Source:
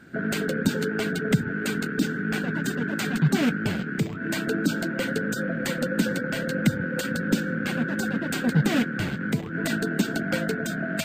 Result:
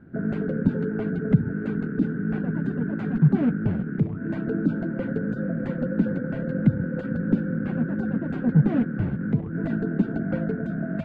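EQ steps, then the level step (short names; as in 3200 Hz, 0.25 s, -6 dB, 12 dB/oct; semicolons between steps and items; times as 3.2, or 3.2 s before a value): LPF 1100 Hz 12 dB/oct; low shelf 210 Hz +11.5 dB; -3.5 dB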